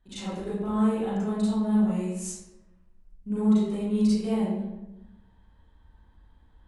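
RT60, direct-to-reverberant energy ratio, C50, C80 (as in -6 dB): 1.0 s, -11.0 dB, -3.5 dB, 1.5 dB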